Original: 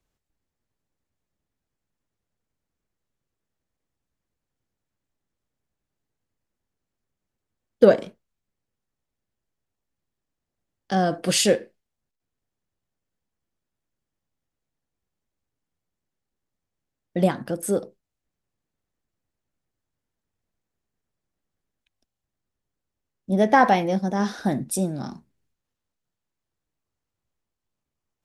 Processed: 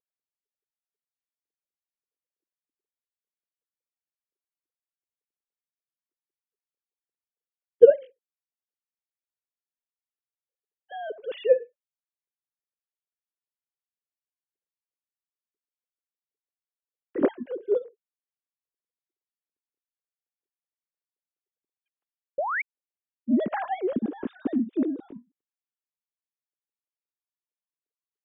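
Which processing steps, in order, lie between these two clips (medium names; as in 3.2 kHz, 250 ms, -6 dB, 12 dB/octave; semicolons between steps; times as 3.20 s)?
formants replaced by sine waves; painted sound rise, 22.38–22.62 s, 520–2400 Hz -17 dBFS; resonant low shelf 500 Hz +12.5 dB, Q 1.5; trim -9 dB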